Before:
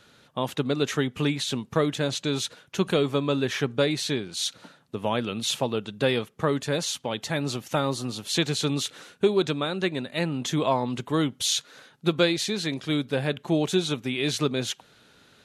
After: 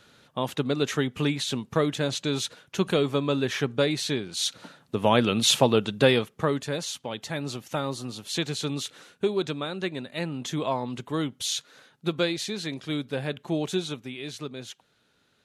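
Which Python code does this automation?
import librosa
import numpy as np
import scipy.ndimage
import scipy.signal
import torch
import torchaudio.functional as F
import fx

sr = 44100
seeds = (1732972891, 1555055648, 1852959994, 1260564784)

y = fx.gain(x, sr, db=fx.line((4.22, -0.5), (5.23, 6.5), (5.86, 6.5), (6.77, -4.0), (13.77, -4.0), (14.29, -11.0)))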